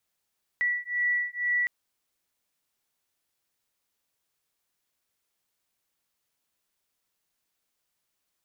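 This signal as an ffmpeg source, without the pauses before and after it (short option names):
-f lavfi -i "aevalsrc='0.0398*(sin(2*PI*1950*t)+sin(2*PI*1952.1*t))':d=1.06:s=44100"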